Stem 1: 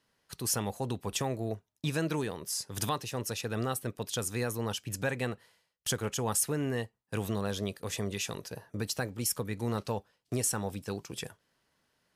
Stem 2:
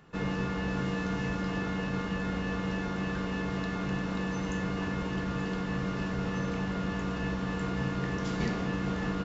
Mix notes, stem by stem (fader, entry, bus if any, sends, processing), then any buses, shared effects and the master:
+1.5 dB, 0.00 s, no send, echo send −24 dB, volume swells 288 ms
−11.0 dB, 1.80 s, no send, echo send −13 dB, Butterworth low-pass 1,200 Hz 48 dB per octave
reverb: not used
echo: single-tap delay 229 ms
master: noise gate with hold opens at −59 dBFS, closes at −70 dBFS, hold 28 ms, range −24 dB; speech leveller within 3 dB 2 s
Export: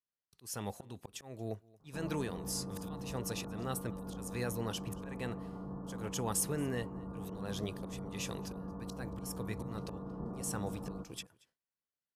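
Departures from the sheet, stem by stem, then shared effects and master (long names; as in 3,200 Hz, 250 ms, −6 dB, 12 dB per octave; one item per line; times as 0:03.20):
stem 1 +1.5 dB → −4.5 dB
master: missing speech leveller within 3 dB 2 s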